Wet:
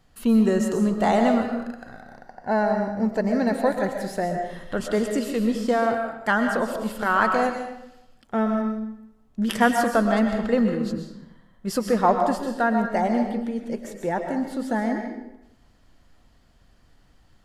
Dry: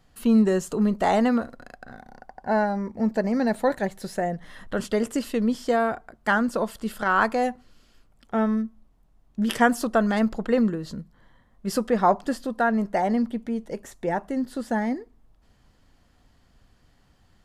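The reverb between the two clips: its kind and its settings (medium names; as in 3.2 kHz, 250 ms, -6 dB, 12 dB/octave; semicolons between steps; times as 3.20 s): algorithmic reverb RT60 0.84 s, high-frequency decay 0.85×, pre-delay 85 ms, DRR 4 dB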